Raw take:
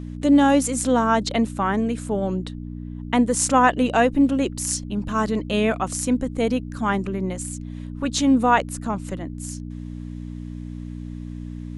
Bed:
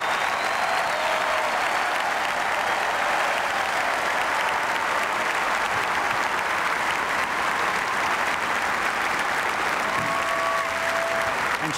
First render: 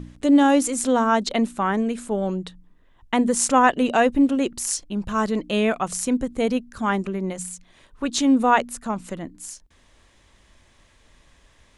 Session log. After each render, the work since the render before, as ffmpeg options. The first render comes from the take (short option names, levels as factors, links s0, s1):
-af "bandreject=f=60:t=h:w=4,bandreject=f=120:t=h:w=4,bandreject=f=180:t=h:w=4,bandreject=f=240:t=h:w=4,bandreject=f=300:t=h:w=4"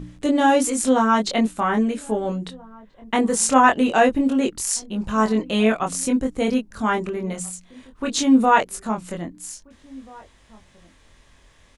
-filter_complex "[0:a]asplit=2[s0][s1];[s1]adelay=23,volume=0.708[s2];[s0][s2]amix=inputs=2:normalize=0,asplit=2[s3][s4];[s4]adelay=1633,volume=0.0631,highshelf=f=4000:g=-36.7[s5];[s3][s5]amix=inputs=2:normalize=0"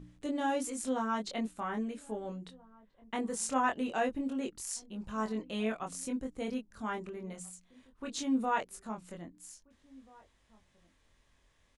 -af "volume=0.168"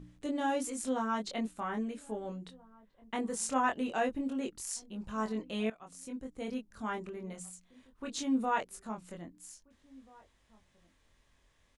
-filter_complex "[0:a]asplit=2[s0][s1];[s0]atrim=end=5.7,asetpts=PTS-STARTPTS,afade=t=out:st=5.696:d=0.004:c=hsin:silence=0.141254[s2];[s1]atrim=start=5.7,asetpts=PTS-STARTPTS,afade=t=in:d=1.01:silence=0.141254[s3];[s2][s3]concat=n=2:v=0:a=1"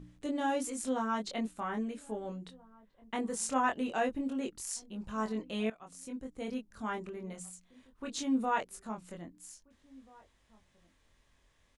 -af anull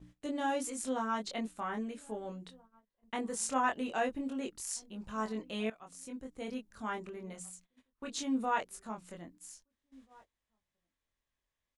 -af "lowshelf=f=440:g=-3.5,agate=range=0.126:threshold=0.00126:ratio=16:detection=peak"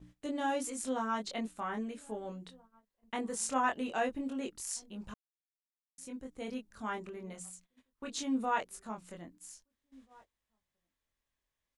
-filter_complex "[0:a]asplit=3[s0][s1][s2];[s0]atrim=end=5.14,asetpts=PTS-STARTPTS,afade=t=out:st=5.136:d=0.004:c=hsin[s3];[s1]atrim=start=5.14:end=5.98,asetpts=PTS-STARTPTS,volume=0[s4];[s2]atrim=start=5.98,asetpts=PTS-STARTPTS,afade=t=in:d=0.004:c=hsin[s5];[s3][s4][s5]concat=n=3:v=0:a=1"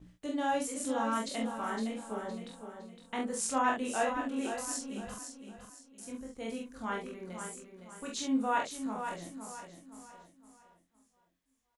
-filter_complex "[0:a]asplit=2[s0][s1];[s1]adelay=45,volume=0.668[s2];[s0][s2]amix=inputs=2:normalize=0,asplit=2[s3][s4];[s4]aecho=0:1:512|1024|1536|2048:0.398|0.143|0.0516|0.0186[s5];[s3][s5]amix=inputs=2:normalize=0"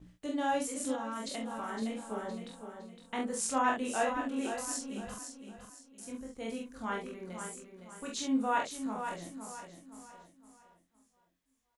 -filter_complex "[0:a]asettb=1/sr,asplit=3[s0][s1][s2];[s0]atrim=end=0.954[s3];[s1]atrim=start=0.95:end=1.82,asetpts=PTS-STARTPTS,afade=t=in:d=0.004:c=qsin,afade=t=out:st=0.866:d=0.004:c=qsin,acompressor=threshold=0.02:ratio=6:attack=3.2:release=140:knee=1:detection=peak[s4];[s2]atrim=start=1.816[s5];[s3][s4]acrossfade=d=0.004:c1=hsin:c2=qsin[s6];[s6][s5]acrossfade=d=0.004:c1=qsin:c2=hsin"